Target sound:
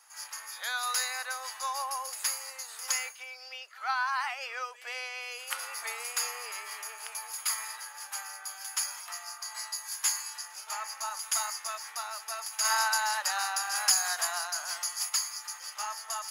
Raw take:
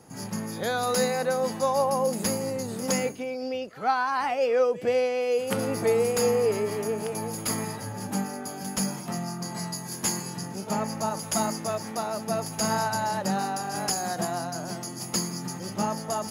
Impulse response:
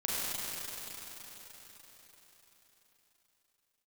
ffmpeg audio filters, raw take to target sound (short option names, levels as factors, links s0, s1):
-filter_complex "[0:a]highpass=f=1100:w=0.5412,highpass=f=1100:w=1.3066,asplit=3[s0][s1][s2];[s0]afade=t=out:st=12.64:d=0.02[s3];[s1]acontrast=31,afade=t=in:st=12.64:d=0.02,afade=t=out:st=15.08:d=0.02[s4];[s2]afade=t=in:st=15.08:d=0.02[s5];[s3][s4][s5]amix=inputs=3:normalize=0,volume=5.01,asoftclip=hard,volume=0.2"